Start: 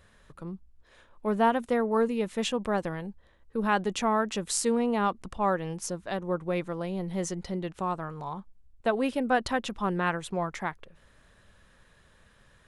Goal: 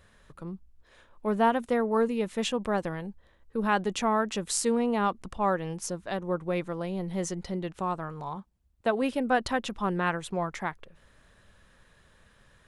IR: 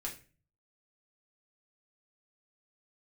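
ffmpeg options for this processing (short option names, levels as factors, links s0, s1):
-filter_complex "[0:a]asettb=1/sr,asplit=3[s0][s1][s2];[s0]atrim=end=8.364[s3];[s1]atrim=start=8.36:end=9.02,asetpts=PTS-STARTPTS,afade=t=in:d=0.004:c=qsin,afade=t=out:st=0.656:d=0.004:c=qsin,highpass=49[s4];[s2]atrim=start=9.016[s5];[s3][s4]acrossfade=d=0.004:c1=hsin:c2=qsin[s6];[s6][s5]acrossfade=d=0.004:c1=qsin:c2=hsin"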